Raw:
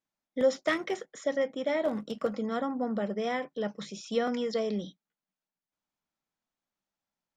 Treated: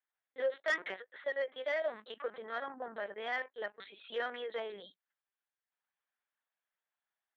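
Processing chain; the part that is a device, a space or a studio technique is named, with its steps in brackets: talking toy (LPC vocoder at 8 kHz pitch kept; HPF 650 Hz 12 dB/oct; bell 1700 Hz +8.5 dB 0.47 oct; soft clip -21.5 dBFS, distortion -19 dB); 1.41–2.22 high shelf 3900 Hz +8.5 dB; gain -2 dB

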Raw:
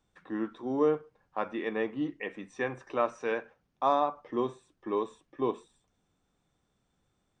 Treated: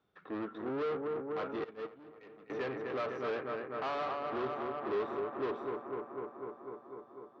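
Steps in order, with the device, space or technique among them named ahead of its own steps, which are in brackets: analogue delay pedal into a guitar amplifier (analogue delay 0.249 s, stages 4096, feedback 77%, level -9.5 dB; tube stage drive 37 dB, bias 0.6; speaker cabinet 96–4500 Hz, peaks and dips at 410 Hz +8 dB, 640 Hz +4 dB, 1300 Hz +8 dB); 1.64–2.5 gate -33 dBFS, range -17 dB

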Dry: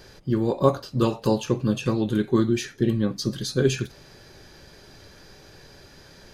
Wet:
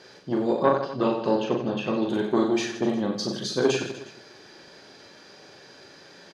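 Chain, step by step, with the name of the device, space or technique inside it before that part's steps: 0.63–1.98 LPF 3500 Hz 12 dB/oct; public-address speaker with an overloaded transformer (core saturation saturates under 530 Hz; BPF 240–6400 Hz); reverse bouncing-ball echo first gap 40 ms, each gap 1.3×, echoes 5

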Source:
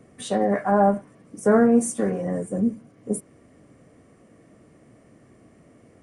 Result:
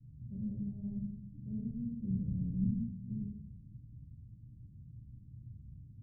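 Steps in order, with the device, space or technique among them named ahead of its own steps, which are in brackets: club heard from the street (limiter -17.5 dBFS, peak gain reduction 10.5 dB; LPF 120 Hz 24 dB/oct; reverb RT60 1.0 s, pre-delay 8 ms, DRR -9 dB)

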